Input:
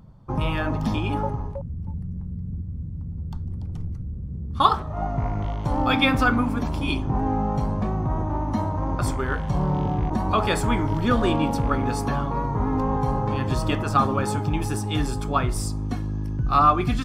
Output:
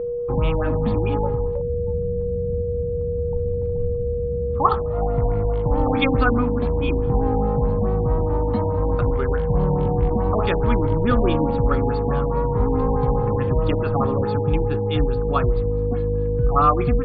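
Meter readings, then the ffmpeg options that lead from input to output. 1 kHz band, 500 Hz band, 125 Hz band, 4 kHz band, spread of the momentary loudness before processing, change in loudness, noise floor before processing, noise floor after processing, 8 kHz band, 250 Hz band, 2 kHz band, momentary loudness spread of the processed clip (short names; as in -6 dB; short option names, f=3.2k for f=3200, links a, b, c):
-0.5 dB, +9.5 dB, +3.5 dB, -5.5 dB, 12 LU, +3.0 dB, -33 dBFS, -24 dBFS, under -40 dB, +1.0 dB, -2.5 dB, 6 LU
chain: -af "lowshelf=f=82:g=8.5,aeval=exprs='val(0)+0.0708*sin(2*PI*480*n/s)':c=same,afftfilt=real='re*lt(b*sr/1024,950*pow(4900/950,0.5+0.5*sin(2*PI*4.7*pts/sr)))':imag='im*lt(b*sr/1024,950*pow(4900/950,0.5+0.5*sin(2*PI*4.7*pts/sr)))':win_size=1024:overlap=0.75"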